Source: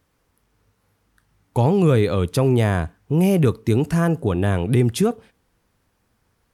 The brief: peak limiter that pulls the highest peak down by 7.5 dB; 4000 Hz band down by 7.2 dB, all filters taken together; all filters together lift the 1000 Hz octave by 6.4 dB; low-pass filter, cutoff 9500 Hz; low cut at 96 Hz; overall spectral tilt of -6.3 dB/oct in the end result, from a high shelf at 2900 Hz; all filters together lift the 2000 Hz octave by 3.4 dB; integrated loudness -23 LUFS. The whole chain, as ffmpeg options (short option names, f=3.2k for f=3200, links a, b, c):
-af "highpass=96,lowpass=9.5k,equalizer=f=1k:t=o:g=8.5,equalizer=f=2k:t=o:g=5.5,highshelf=f=2.9k:g=-9,equalizer=f=4k:t=o:g=-5.5,volume=-1dB,alimiter=limit=-12dB:level=0:latency=1"